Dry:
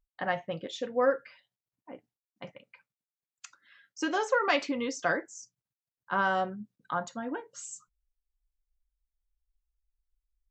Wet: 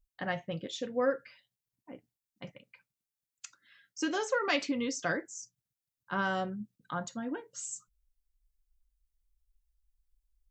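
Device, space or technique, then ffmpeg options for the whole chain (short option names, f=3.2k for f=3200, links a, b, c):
smiley-face EQ: -af "lowshelf=f=190:g=7.5,equalizer=f=890:t=o:w=1.7:g=-5.5,highshelf=f=5.1k:g=6,volume=-1.5dB"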